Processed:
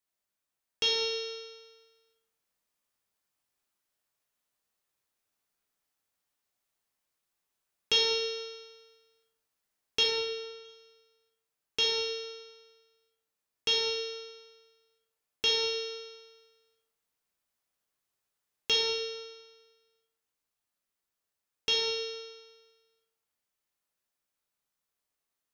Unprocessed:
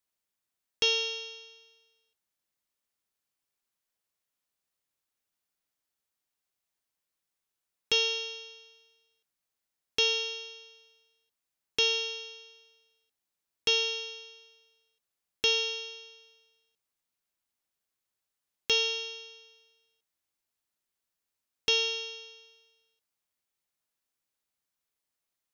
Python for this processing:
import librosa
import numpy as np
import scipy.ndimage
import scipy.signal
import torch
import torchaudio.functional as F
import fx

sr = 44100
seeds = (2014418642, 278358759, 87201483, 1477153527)

y = fx.rider(x, sr, range_db=10, speed_s=0.5)
y = fx.air_absorb(y, sr, metres=84.0, at=(10.03, 10.65))
y = fx.rev_plate(y, sr, seeds[0], rt60_s=1.2, hf_ratio=0.45, predelay_ms=0, drr_db=-1.5)
y = y * 10.0 ** (-1.0 / 20.0)